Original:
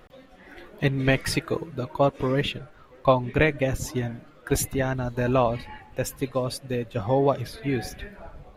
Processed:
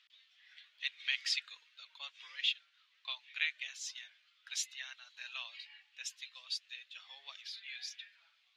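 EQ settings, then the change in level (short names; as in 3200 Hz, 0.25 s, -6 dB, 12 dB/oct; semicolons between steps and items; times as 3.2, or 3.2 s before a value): dynamic EQ 7000 Hz, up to +4 dB, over -46 dBFS, Q 1.3; ladder high-pass 2700 Hz, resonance 30%; air absorption 170 m; +7.5 dB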